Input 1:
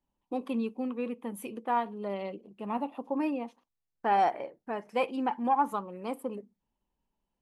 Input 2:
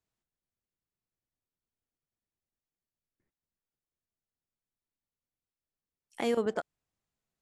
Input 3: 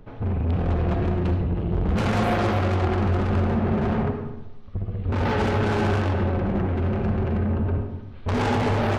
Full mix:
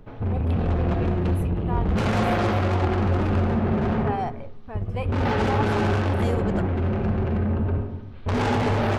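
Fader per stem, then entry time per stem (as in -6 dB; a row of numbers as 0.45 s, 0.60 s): -4.0 dB, -1.0 dB, 0.0 dB; 0.00 s, 0.00 s, 0.00 s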